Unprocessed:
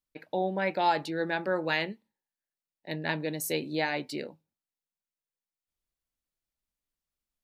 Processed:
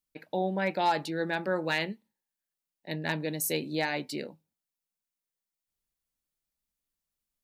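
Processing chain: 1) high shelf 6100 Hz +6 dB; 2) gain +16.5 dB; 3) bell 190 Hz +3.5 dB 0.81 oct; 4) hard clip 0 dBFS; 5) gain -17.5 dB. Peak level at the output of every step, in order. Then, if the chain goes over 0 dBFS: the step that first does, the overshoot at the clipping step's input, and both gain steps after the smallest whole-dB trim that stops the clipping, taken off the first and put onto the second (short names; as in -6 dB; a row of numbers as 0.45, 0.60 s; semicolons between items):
-12.5, +4.0, +4.0, 0.0, -17.5 dBFS; step 2, 4.0 dB; step 2 +12.5 dB, step 5 -13.5 dB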